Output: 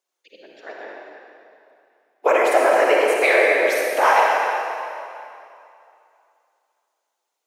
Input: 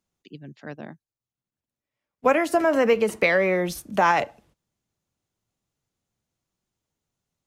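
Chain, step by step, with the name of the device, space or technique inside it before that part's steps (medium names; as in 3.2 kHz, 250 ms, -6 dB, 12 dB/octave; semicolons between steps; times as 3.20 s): whispering ghost (whisper effect; high-pass 440 Hz 24 dB/octave; reverberation RT60 2.6 s, pre-delay 42 ms, DRR -2.5 dB); trim +2 dB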